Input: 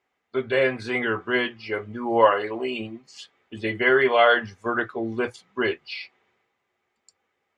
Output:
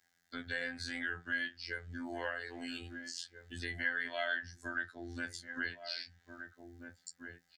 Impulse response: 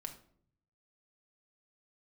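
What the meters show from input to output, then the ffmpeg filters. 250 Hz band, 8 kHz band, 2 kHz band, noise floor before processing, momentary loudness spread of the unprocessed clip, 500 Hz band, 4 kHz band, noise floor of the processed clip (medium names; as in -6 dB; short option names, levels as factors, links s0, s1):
-16.0 dB, no reading, -11.0 dB, -77 dBFS, 15 LU, -24.0 dB, -10.5 dB, -76 dBFS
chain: -filter_complex "[0:a]firequalizer=gain_entry='entry(170,0);entry(370,-17);entry(740,-8);entry(1100,-19);entry(1600,4);entry(2400,-12);entry(4300,2)':delay=0.05:min_phase=1,afftfilt=real='hypot(re,im)*cos(PI*b)':imag='0':win_size=2048:overlap=0.75,acrossover=split=140|980|3500[s0][s1][s2][s3];[s3]acontrast=72[s4];[s0][s1][s2][s4]amix=inputs=4:normalize=0,asplit=2[s5][s6];[s6]adelay=1633,volume=0.178,highshelf=f=4000:g=-36.7[s7];[s5][s7]amix=inputs=2:normalize=0,acompressor=threshold=0.00251:ratio=2,volume=2"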